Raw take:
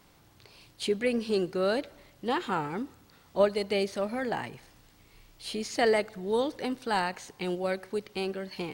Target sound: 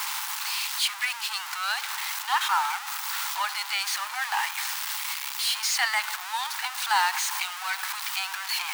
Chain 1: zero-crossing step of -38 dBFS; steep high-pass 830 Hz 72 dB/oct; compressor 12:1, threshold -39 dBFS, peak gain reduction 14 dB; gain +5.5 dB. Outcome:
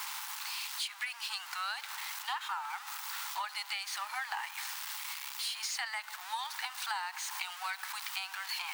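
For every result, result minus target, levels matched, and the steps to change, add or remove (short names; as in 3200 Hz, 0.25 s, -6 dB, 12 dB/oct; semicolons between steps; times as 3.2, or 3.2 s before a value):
compressor: peak gain reduction +14 dB; zero-crossing step: distortion -8 dB
remove: compressor 12:1, threshold -39 dBFS, peak gain reduction 14 dB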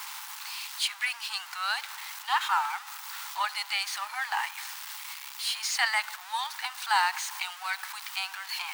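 zero-crossing step: distortion -8 dB
change: zero-crossing step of -28.5 dBFS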